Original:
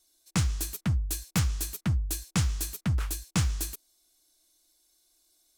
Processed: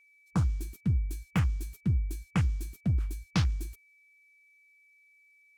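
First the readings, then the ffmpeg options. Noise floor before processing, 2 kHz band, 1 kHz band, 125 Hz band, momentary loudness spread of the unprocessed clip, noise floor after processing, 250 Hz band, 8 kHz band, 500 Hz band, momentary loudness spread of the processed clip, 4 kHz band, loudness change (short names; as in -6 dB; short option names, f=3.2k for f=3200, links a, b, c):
-69 dBFS, -3.0 dB, -1.5 dB, 0.0 dB, 3 LU, -63 dBFS, 0.0 dB, -15.5 dB, -1.5 dB, 4 LU, -7.5 dB, -1.0 dB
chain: -af "afwtdn=0.0126,aeval=exprs='val(0)+0.001*sin(2*PI*2300*n/s)':c=same"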